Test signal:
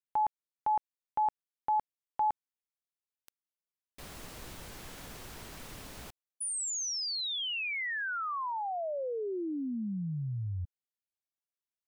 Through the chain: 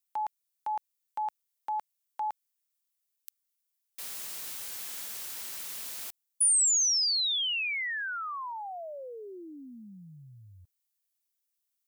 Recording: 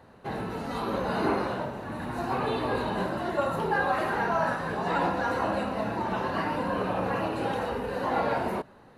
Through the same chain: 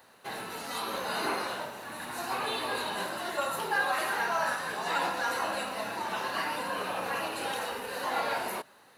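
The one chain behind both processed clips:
spectral tilt +4.5 dB per octave
level −2.5 dB

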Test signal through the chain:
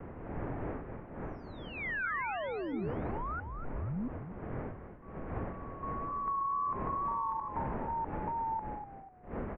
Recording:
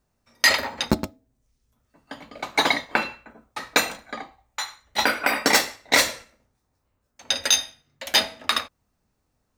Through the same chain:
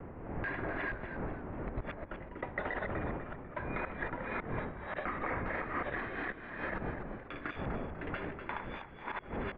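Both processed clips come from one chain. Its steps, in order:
delay that plays each chunk backwards 680 ms, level −1 dB
wind on the microphone 580 Hz −27 dBFS
noise gate with hold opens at −38 dBFS
brickwall limiter −13 dBFS
downward compressor, threshold −26 dBFS
tape wow and flutter 20 cents
echo with shifted repeats 247 ms, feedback 39%, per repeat −59 Hz, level −9 dB
single-sideband voice off tune −250 Hz 200–2,500 Hz
level −6 dB

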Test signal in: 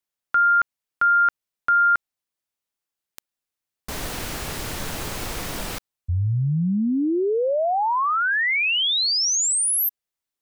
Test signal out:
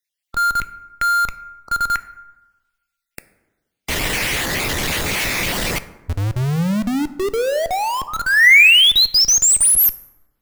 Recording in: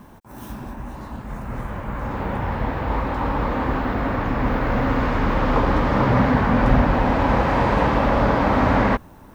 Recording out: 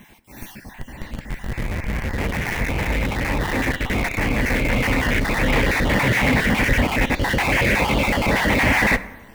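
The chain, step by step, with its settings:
time-frequency cells dropped at random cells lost 32%
high shelf with overshoot 1,600 Hz +8.5 dB, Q 3
in parallel at −3 dB: comparator with hysteresis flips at −24 dBFS
on the sum: dense smooth reverb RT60 1.2 s, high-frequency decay 0.45×, DRR 12.5 dB
level −2.5 dB

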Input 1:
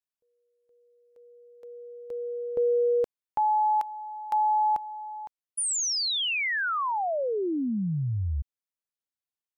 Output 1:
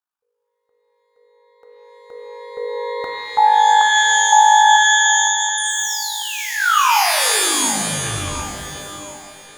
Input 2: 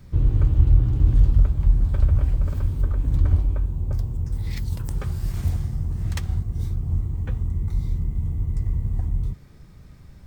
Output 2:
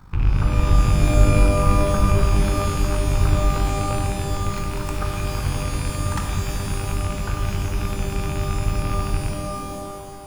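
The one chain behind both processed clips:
loose part that buzzes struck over −25 dBFS, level −26 dBFS
flat-topped bell 1,100 Hz +13.5 dB 1.2 octaves
delay with a band-pass on its return 728 ms, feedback 42%, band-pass 540 Hz, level −11 dB
amplitude modulation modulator 52 Hz, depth 60%
reverb with rising layers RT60 1.7 s, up +12 semitones, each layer −2 dB, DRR 3 dB
level +1.5 dB

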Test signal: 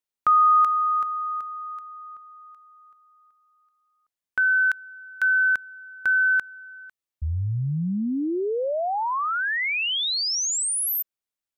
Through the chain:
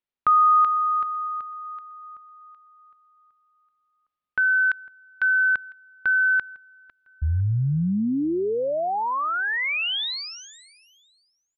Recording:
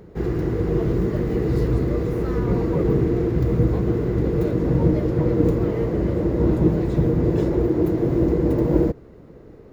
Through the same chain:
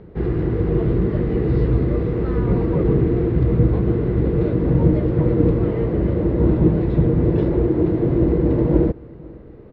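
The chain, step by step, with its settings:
low-pass filter 3,800 Hz 24 dB per octave
low-shelf EQ 260 Hz +4 dB
repeating echo 503 ms, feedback 34%, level −24 dB

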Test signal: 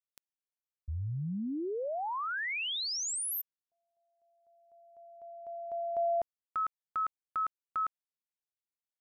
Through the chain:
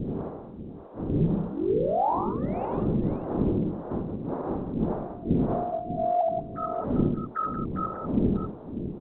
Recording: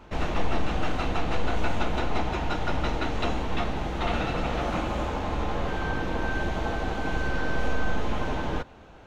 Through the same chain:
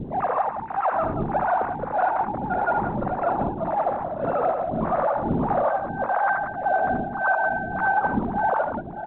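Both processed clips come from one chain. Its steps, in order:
three sine waves on the formant tracks
wind on the microphone 380 Hz −38 dBFS
low-pass filter 1,300 Hz 24 dB per octave
parametric band 240 Hz +8.5 dB 2.3 octaves
reversed playback
downward compressor 6 to 1, threshold −25 dBFS
reversed playback
two-band tremolo in antiphase 1.7 Hz, depth 100%, crossover 480 Hz
on a send: multi-tap delay 49/75/80/181/594 ms −16/−7/−17.5/−9/−10 dB
on the sum: level +8 dB
A-law companding 64 kbit/s 8,000 Hz

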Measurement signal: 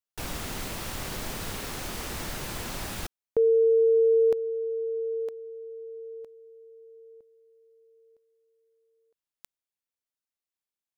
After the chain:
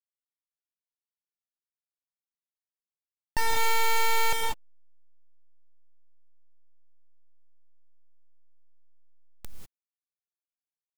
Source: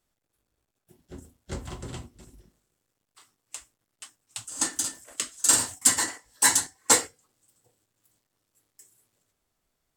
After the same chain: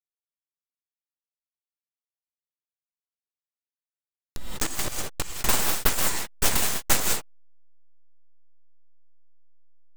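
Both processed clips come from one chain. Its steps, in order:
hold until the input has moved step −20 dBFS
reverb whose tail is shaped and stops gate 220 ms rising, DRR 1.5 dB
full-wave rectification

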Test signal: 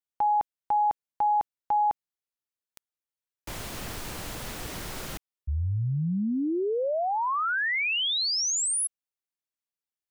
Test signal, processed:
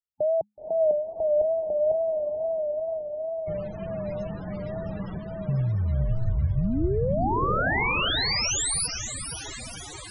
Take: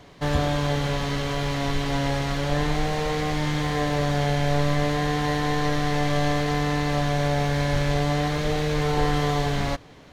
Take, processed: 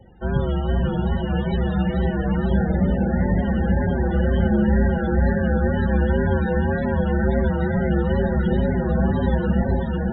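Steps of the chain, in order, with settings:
low-shelf EQ 190 Hz +3 dB
feedback delay with all-pass diffusion 507 ms, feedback 71%, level −3 dB
tape wow and flutter 62 cents
frequency shifter −210 Hz
spectral peaks only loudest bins 32

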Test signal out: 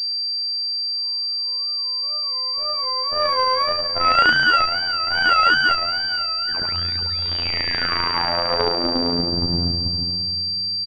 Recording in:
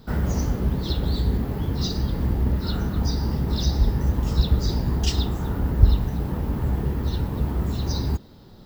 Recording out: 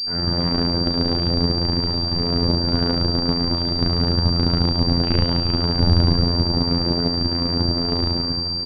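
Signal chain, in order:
lower of the sound and its delayed copy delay 7.8 ms
repeating echo 157 ms, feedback 48%, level −9.5 dB
spring reverb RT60 2.6 s, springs 34/39/44 ms, chirp 70 ms, DRR −9 dB
surface crackle 120 per second −37 dBFS
asymmetric clip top −23 dBFS, bottom −3.5 dBFS
harmonic generator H 4 −8 dB, 6 −19 dB, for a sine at −3.5 dBFS
tape wow and flutter 130 cents
phases set to zero 86 Hz
switching amplifier with a slow clock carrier 4,700 Hz
level −2.5 dB

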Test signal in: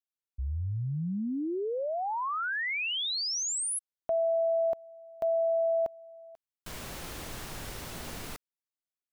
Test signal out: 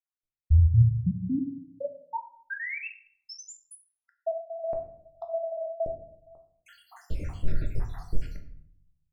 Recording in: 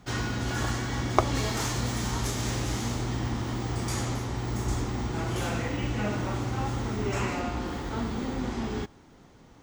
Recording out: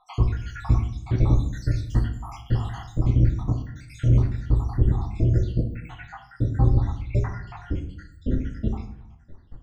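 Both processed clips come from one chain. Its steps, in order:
time-frequency cells dropped at random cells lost 80%
RIAA equalisation playback
rectangular room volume 100 cubic metres, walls mixed, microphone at 0.56 metres

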